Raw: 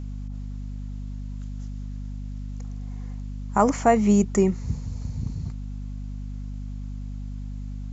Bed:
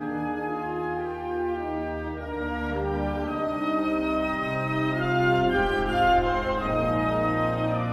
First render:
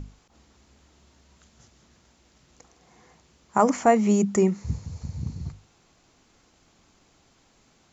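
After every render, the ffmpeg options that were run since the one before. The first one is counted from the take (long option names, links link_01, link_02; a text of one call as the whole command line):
ffmpeg -i in.wav -af "bandreject=frequency=50:width_type=h:width=6,bandreject=frequency=100:width_type=h:width=6,bandreject=frequency=150:width_type=h:width=6,bandreject=frequency=200:width_type=h:width=6,bandreject=frequency=250:width_type=h:width=6" out.wav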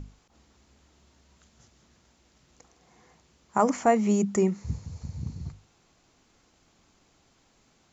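ffmpeg -i in.wav -af "volume=-3dB" out.wav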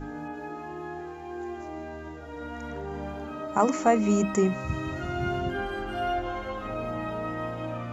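ffmpeg -i in.wav -i bed.wav -filter_complex "[1:a]volume=-8dB[link_01];[0:a][link_01]amix=inputs=2:normalize=0" out.wav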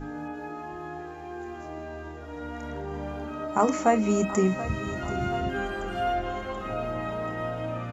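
ffmpeg -i in.wav -filter_complex "[0:a]asplit=2[link_01][link_02];[link_02]adelay=27,volume=-12dB[link_03];[link_01][link_03]amix=inputs=2:normalize=0,aecho=1:1:732|1464|2196|2928|3660:0.178|0.0996|0.0558|0.0312|0.0175" out.wav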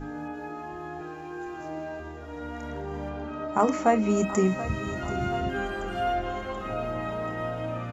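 ffmpeg -i in.wav -filter_complex "[0:a]asettb=1/sr,asplit=3[link_01][link_02][link_03];[link_01]atrim=end=1.004[link_04];[link_02]atrim=start=1:end=2,asetpts=PTS-STARTPTS,afade=type=in:duration=0.004:curve=qsin,afade=type=out:start_time=0.996:duration=0.004:curve=qsin,aecho=1:1:6.4:0.65,atrim=end_sample=44100[link_05];[link_03]atrim=start=1.996[link_06];[link_04][link_05]acrossfade=duration=0.004:curve1=hsin:curve2=qsin[link_07];[link_07][link_06]acrossfade=duration=0.004:curve1=qsin:curve2=hsin,asettb=1/sr,asplit=3[link_08][link_09][link_10];[link_08]atrim=end=3.094[link_11];[link_09]atrim=start=3.09:end=4.17,asetpts=PTS-STARTPTS,afade=type=in:duration=0.004:curve=qsin,afade=type=out:start_time=1.076:duration=0.004:curve=qsin,adynamicsmooth=sensitivity=1.5:basefreq=6800[link_12];[link_10]atrim=start=4.166[link_13];[link_11][link_12]acrossfade=duration=0.004:curve1=hsin:curve2=qsin[link_14];[link_14][link_13]acrossfade=duration=0.004:curve1=qsin:curve2=hsin" out.wav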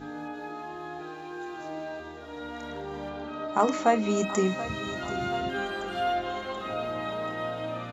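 ffmpeg -i in.wav -af "highpass=frequency=230:poles=1,equalizer=frequency=3800:width_type=o:width=0.42:gain=11" out.wav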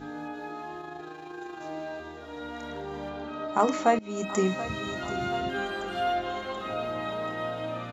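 ffmpeg -i in.wav -filter_complex "[0:a]asplit=3[link_01][link_02][link_03];[link_01]afade=type=out:start_time=0.79:duration=0.02[link_04];[link_02]tremolo=f=26:d=0.462,afade=type=in:start_time=0.79:duration=0.02,afade=type=out:start_time=1.6:duration=0.02[link_05];[link_03]afade=type=in:start_time=1.6:duration=0.02[link_06];[link_04][link_05][link_06]amix=inputs=3:normalize=0,asplit=2[link_07][link_08];[link_07]atrim=end=3.99,asetpts=PTS-STARTPTS,afade=type=out:start_time=3.986:duration=0.004:curve=hsin:silence=0.0794328[link_09];[link_08]atrim=start=3.99,asetpts=PTS-STARTPTS,afade=type=in:duration=0.41:silence=0.0794328[link_10];[link_09][link_10]concat=n=2:v=0:a=1" out.wav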